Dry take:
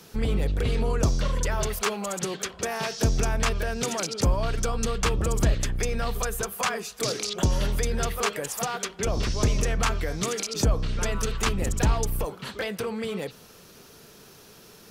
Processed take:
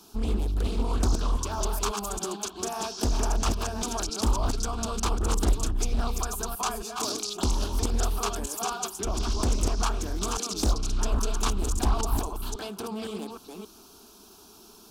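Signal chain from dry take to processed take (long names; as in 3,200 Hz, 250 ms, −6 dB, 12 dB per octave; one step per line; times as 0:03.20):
delay that plays each chunk backwards 273 ms, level −4.5 dB
phaser with its sweep stopped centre 520 Hz, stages 6
highs frequency-modulated by the lows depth 0.73 ms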